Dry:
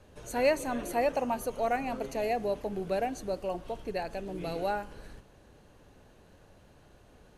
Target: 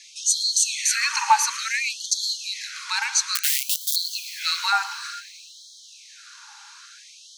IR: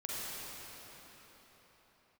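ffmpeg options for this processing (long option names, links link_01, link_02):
-filter_complex "[0:a]highpass=170,equalizer=frequency=170:width_type=q:width=4:gain=8,equalizer=frequency=390:width_type=q:width=4:gain=-3,equalizer=frequency=1100:width_type=q:width=4:gain=-6,equalizer=frequency=1900:width_type=q:width=4:gain=-6,equalizer=frequency=2900:width_type=q:width=4:gain=-8,equalizer=frequency=5400:width_type=q:width=4:gain=4,lowpass=frequency=6800:width=0.5412,lowpass=frequency=6800:width=1.3066,afreqshift=-42,asettb=1/sr,asplit=3[link_01][link_02][link_03];[link_01]atrim=end=3.354[link_04];[link_02]atrim=start=3.35:end=3.96,asetpts=PTS-STARTPTS,afade=type=in:duration=0.004:curve=qsin,afade=type=out:start_time=0.606:duration=0.004:curve=qsin,acrusher=bits=4:dc=4:mix=0:aa=0.000001[link_05];[link_03]atrim=start=3.956[link_06];[link_04][link_05]acrossfade=duration=0.004:curve1=hsin:curve2=qsin[link_07];[link_07][link_06]acrossfade=duration=0.004:curve1=qsin:curve2=hsin,crystalizer=i=2:c=0,asplit=2[link_08][link_09];[1:a]atrim=start_sample=2205,adelay=113[link_10];[link_09][link_10]afir=irnorm=-1:irlink=0,volume=-15.5dB[link_11];[link_08][link_11]amix=inputs=2:normalize=0,alimiter=level_in=21.5dB:limit=-1dB:release=50:level=0:latency=1,afftfilt=real='re*gte(b*sr/1024,790*pow(3200/790,0.5+0.5*sin(2*PI*0.57*pts/sr)))':imag='im*gte(b*sr/1024,790*pow(3200/790,0.5+0.5*sin(2*PI*0.57*pts/sr)))':win_size=1024:overlap=0.75"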